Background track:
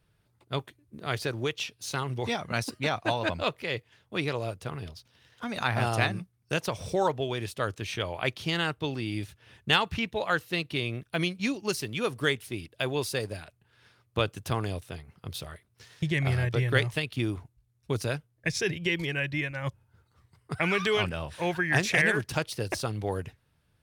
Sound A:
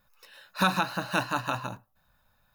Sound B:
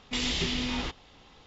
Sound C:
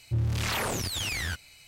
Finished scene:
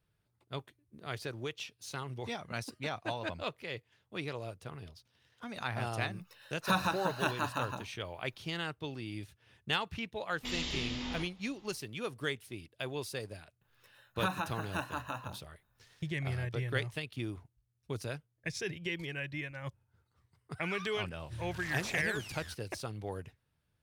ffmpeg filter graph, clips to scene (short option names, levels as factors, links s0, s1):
-filter_complex "[1:a]asplit=2[s0][s1];[0:a]volume=0.355[s2];[2:a]asplit=2[s3][s4];[s4]adelay=45,volume=0.501[s5];[s3][s5]amix=inputs=2:normalize=0[s6];[s1]equalizer=f=4700:t=o:w=0.29:g=-14[s7];[s0]atrim=end=2.54,asetpts=PTS-STARTPTS,volume=0.531,afade=t=in:d=0.004:c=hsin,afade=t=out:st=2.536:d=0.004:c=hsin,adelay=6080[s8];[s6]atrim=end=1.46,asetpts=PTS-STARTPTS,volume=0.355,afade=t=in:d=0.004:c=hsin,afade=t=out:st=1.456:d=0.004:c=hsin,adelay=10320[s9];[s7]atrim=end=2.54,asetpts=PTS-STARTPTS,volume=0.335,afade=t=in:d=0.004:c=hsin,afade=t=out:st=2.536:d=0.004:c=hsin,adelay=13610[s10];[3:a]atrim=end=1.67,asetpts=PTS-STARTPTS,volume=0.15,afade=t=in:d=0.004:c=hsin,afade=t=out:st=1.666:d=0.004:c=hsin,adelay=21190[s11];[s2][s8][s9][s10][s11]amix=inputs=5:normalize=0"